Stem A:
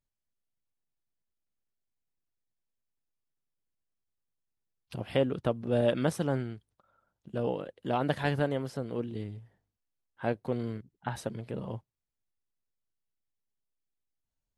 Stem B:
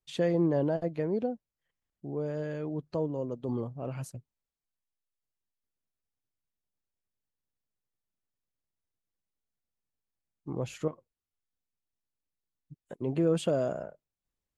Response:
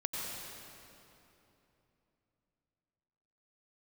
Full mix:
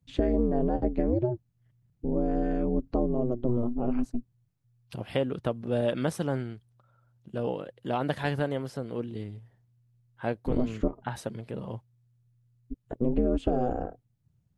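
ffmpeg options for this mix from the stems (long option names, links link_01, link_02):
-filter_complex "[0:a]volume=0.5dB[link_01];[1:a]acontrast=36,aemphasis=mode=reproduction:type=riaa,aeval=exprs='val(0)*sin(2*PI*120*n/s)':channel_layout=same,volume=0dB[link_02];[link_01][link_02]amix=inputs=2:normalize=0,acompressor=threshold=-21dB:ratio=6"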